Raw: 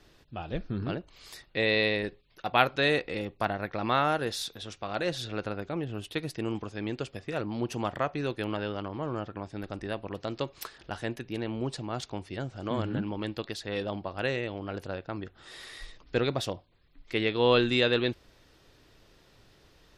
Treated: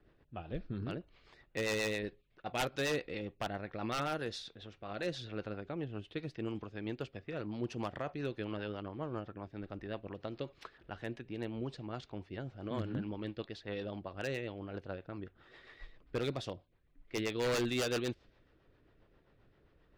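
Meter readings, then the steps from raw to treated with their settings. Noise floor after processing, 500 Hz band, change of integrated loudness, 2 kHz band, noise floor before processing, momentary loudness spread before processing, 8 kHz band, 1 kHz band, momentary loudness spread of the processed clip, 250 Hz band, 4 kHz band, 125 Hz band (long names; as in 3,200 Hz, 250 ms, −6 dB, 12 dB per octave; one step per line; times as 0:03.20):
−69 dBFS, −8.0 dB, −8.5 dB, −9.5 dB, −61 dBFS, 15 LU, −2.5 dB, −11.0 dB, 12 LU, −7.0 dB, −10.0 dB, −6.5 dB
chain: low-pass that shuts in the quiet parts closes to 1,800 Hz, open at −22 dBFS
rotating-speaker cabinet horn 7.5 Hz
wave folding −21.5 dBFS
level −5 dB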